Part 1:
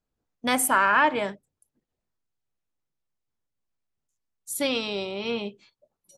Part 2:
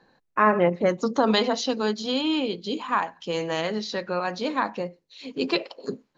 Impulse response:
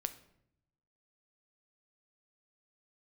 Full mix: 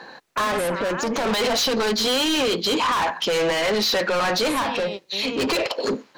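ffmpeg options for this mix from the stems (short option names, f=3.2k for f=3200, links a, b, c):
-filter_complex "[0:a]alimiter=limit=-16.5dB:level=0:latency=1,volume=-1dB[a];[1:a]asplit=2[b][c];[c]highpass=f=720:p=1,volume=33dB,asoftclip=type=tanh:threshold=-7.5dB[d];[b][d]amix=inputs=2:normalize=0,lowpass=f=6.3k:p=1,volume=-6dB,volume=-3.5dB,asplit=2[e][f];[f]apad=whole_len=272137[g];[a][g]sidechaingate=range=-33dB:threshold=-29dB:ratio=16:detection=peak[h];[h][e]amix=inputs=2:normalize=0,alimiter=limit=-17.5dB:level=0:latency=1:release=88"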